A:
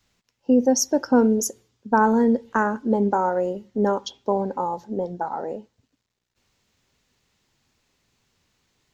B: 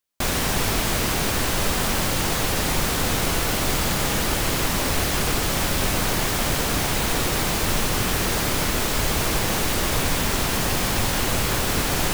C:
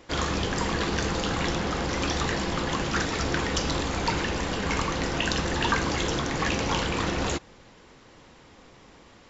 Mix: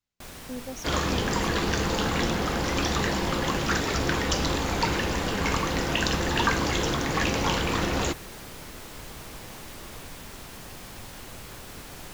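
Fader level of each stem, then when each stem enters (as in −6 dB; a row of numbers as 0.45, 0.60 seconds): −20.0, −19.5, +1.0 decibels; 0.00, 0.00, 0.75 seconds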